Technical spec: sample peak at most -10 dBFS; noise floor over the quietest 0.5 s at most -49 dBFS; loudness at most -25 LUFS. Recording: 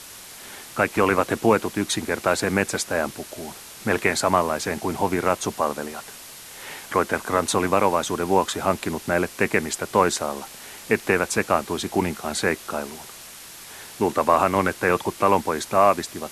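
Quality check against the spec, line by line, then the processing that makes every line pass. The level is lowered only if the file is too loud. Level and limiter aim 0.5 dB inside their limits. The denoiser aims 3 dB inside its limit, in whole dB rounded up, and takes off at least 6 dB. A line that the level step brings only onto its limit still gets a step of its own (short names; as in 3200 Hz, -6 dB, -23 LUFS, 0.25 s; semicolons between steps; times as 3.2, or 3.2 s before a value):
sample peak -4.0 dBFS: fail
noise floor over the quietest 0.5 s -42 dBFS: fail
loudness -23.0 LUFS: fail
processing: denoiser 8 dB, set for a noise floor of -42 dBFS; gain -2.5 dB; limiter -10.5 dBFS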